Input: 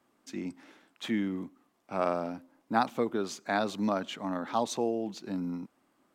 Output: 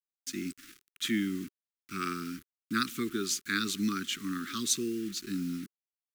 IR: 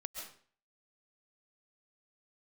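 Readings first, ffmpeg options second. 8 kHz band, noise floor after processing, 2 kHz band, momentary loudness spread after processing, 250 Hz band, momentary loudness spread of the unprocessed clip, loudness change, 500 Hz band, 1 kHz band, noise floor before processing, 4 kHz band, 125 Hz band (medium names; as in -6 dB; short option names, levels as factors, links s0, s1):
+11.5 dB, under -85 dBFS, +3.0 dB, 12 LU, 0.0 dB, 12 LU, -0.5 dB, -9.5 dB, -8.0 dB, -72 dBFS, +7.5 dB, 0.0 dB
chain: -af "crystalizer=i=3.5:c=0,acrusher=bits=7:mix=0:aa=0.000001,asuperstop=centerf=690:order=12:qfactor=0.84"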